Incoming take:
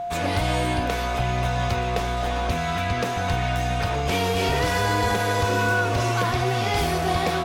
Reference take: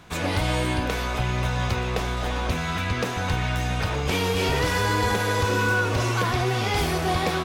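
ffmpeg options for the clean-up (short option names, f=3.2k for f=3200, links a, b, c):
-af "bandreject=f=700:w=30"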